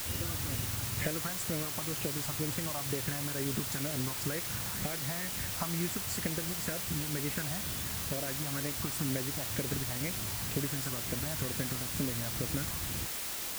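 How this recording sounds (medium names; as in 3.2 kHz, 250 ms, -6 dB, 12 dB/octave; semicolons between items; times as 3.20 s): phasing stages 4, 2.1 Hz, lowest notch 440–1000 Hz; a quantiser's noise floor 6-bit, dither triangular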